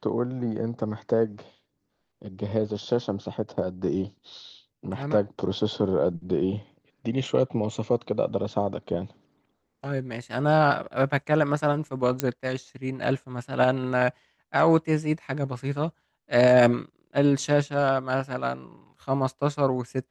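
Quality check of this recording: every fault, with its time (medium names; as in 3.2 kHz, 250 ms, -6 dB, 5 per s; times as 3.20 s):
12.20 s: pop -8 dBFS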